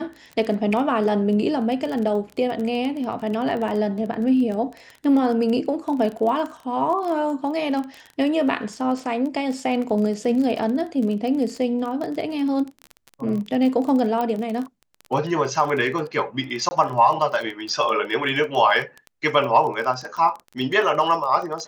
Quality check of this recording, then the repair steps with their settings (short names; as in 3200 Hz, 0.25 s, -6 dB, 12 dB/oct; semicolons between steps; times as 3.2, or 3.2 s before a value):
crackle 22/s -27 dBFS
14.21 pop -14 dBFS
16.69–16.71 gap 20 ms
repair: de-click; interpolate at 16.69, 20 ms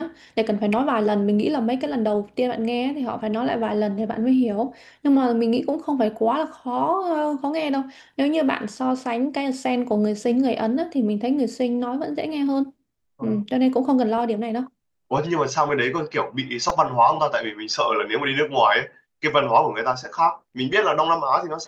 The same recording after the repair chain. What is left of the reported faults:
none